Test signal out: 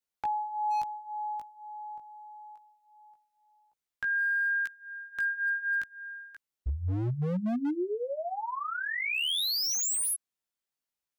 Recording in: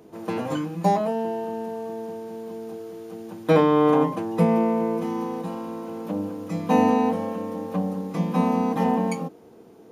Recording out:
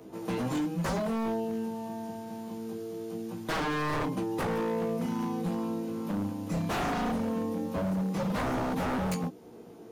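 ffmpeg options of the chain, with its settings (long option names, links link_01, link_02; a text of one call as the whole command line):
ffmpeg -i in.wav -filter_complex "[0:a]flanger=delay=15.5:depth=3.5:speed=0.23,acrossover=split=280|3000[link_01][link_02][link_03];[link_02]acompressor=threshold=-54dB:ratio=1.5[link_04];[link_01][link_04][link_03]amix=inputs=3:normalize=0,aeval=exprs='0.0335*(abs(mod(val(0)/0.0335+3,4)-2)-1)':channel_layout=same,volume=4.5dB" out.wav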